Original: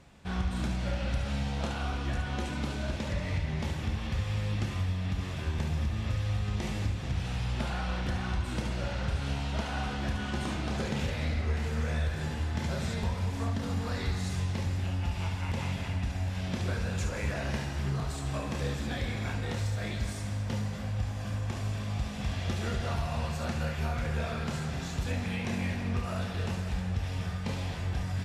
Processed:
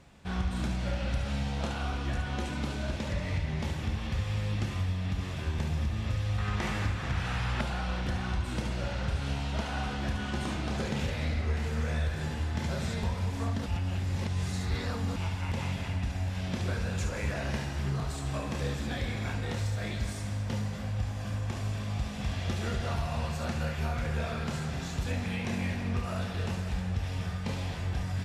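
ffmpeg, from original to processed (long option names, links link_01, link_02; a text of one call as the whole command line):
ffmpeg -i in.wav -filter_complex "[0:a]asettb=1/sr,asplit=3[link_01][link_02][link_03];[link_01]atrim=end=6.384[link_04];[link_02]atrim=start=6.38:end=7.61,asetpts=PTS-STARTPTS,afade=type=in:duration=0.004:curve=qsin,afade=type=out:start_time=1.226:duration=0.004:curve=qsin,equalizer=frequency=1400:width=0.87:gain=10.5[link_05];[link_03]atrim=start=7.606[link_06];[link_04][link_05]acrossfade=duration=0.004:curve1=hsin:curve2=qsin[link_07];[link_07][link_06]acrossfade=duration=0.004:curve1=qsin:curve2=hsin,asplit=3[link_08][link_09][link_10];[link_08]atrim=end=13.662[link_11];[link_09]atrim=start=13.658:end=15.162,asetpts=PTS-STARTPTS,areverse[link_12];[link_10]atrim=start=15.158[link_13];[link_11][link_12]acrossfade=duration=0.004:curve1=hsin:curve2=hsin[link_14];[link_14][link_13]acrossfade=duration=0.004:curve1=hsin:curve2=hsin" out.wav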